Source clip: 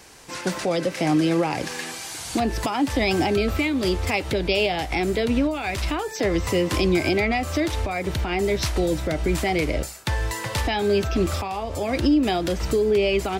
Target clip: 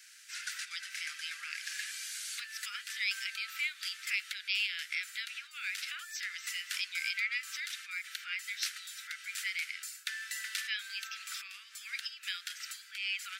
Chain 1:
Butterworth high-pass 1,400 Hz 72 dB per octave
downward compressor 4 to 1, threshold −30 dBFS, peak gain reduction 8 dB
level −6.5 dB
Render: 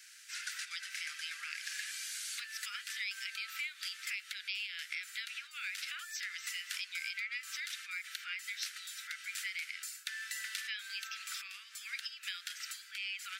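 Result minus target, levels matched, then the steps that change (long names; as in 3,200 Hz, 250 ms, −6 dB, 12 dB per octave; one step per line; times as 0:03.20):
downward compressor: peak gain reduction +8 dB
remove: downward compressor 4 to 1, threshold −30 dBFS, peak gain reduction 8 dB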